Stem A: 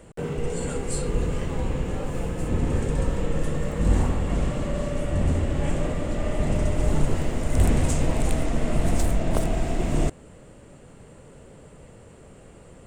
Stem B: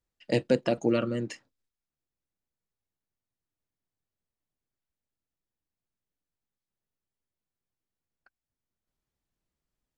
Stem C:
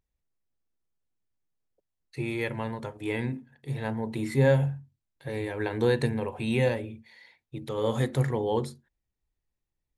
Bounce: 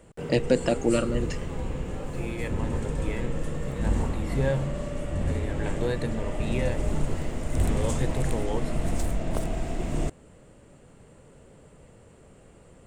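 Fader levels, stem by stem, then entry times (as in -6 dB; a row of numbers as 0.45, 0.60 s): -5.0, +2.0, -5.0 dB; 0.00, 0.00, 0.00 s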